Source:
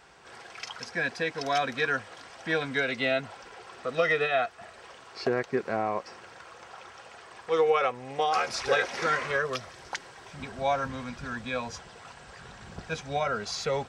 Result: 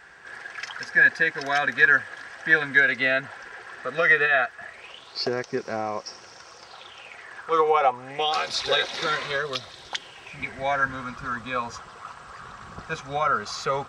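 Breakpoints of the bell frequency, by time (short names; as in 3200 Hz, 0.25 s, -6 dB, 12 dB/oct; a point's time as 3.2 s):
bell +15 dB 0.47 oct
4.64 s 1700 Hz
5.29 s 5500 Hz
6.55 s 5500 Hz
7.86 s 750 Hz
8.33 s 3800 Hz
9.81 s 3800 Hz
11.15 s 1200 Hz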